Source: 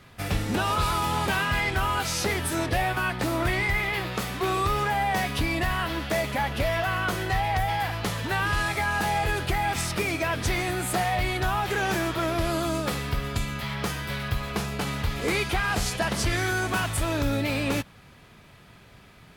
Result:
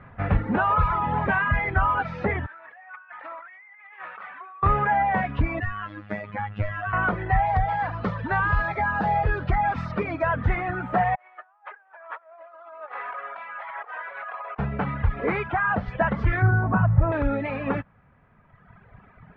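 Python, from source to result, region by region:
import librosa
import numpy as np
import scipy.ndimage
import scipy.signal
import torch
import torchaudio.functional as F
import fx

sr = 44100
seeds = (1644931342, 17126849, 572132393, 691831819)

y = fx.chain(x, sr, fx.highpass(hz=1500.0, slope=12),
    fx.spacing_loss(db_at_10k=29),
    fx.over_compress(threshold_db=-44.0, ratio=-1.0), at=(2.46, 4.63))
y = fx.chain(y, sr, fx.peak_eq(hz=690.0, db=-7.0, octaves=2.3),
    fx.robotise(hz=103.0),
    fx.lowpass_res(hz=7700.0, q=4.2), at=(5.6, 6.93))
y = fx.chain(y, sr, fx.brickwall_lowpass(high_hz=14000.0),
    fx.high_shelf_res(hz=3600.0, db=8.5, q=1.5), at=(7.46, 10.34))
y = fx.chain(y, sr, fx.highpass(hz=650.0, slope=24),
    fx.spacing_loss(db_at_10k=22),
    fx.over_compress(threshold_db=-40.0, ratio=-0.5), at=(11.15, 14.59))
y = fx.chain(y, sr, fx.highpass(hz=110.0, slope=12),
    fx.high_shelf(hz=5700.0, db=-7.0),
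    fx.notch(hz=6900.0, q=6.4), at=(15.47, 15.88))
y = fx.chain(y, sr, fx.lowpass(hz=1400.0, slope=12),
    fx.peak_eq(hz=130.0, db=12.5, octaves=1.1), at=(16.42, 17.12))
y = scipy.signal.sosfilt(scipy.signal.butter(4, 1800.0, 'lowpass', fs=sr, output='sos'), y)
y = fx.peak_eq(y, sr, hz=350.0, db=-7.5, octaves=0.58)
y = fx.dereverb_blind(y, sr, rt60_s=2.0)
y = y * 10.0 ** (6.5 / 20.0)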